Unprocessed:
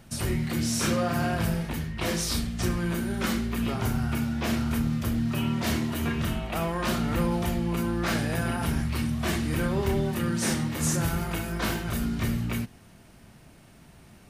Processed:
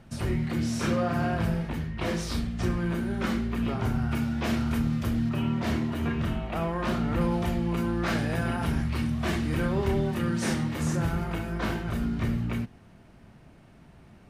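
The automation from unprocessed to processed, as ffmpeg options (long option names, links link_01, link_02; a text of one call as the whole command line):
ffmpeg -i in.wav -af "asetnsamples=nb_out_samples=441:pad=0,asendcmd='4.11 lowpass f 4700;5.29 lowpass f 1900;7.21 lowpass f 3600;10.83 lowpass f 1900',lowpass=frequency=2200:poles=1" out.wav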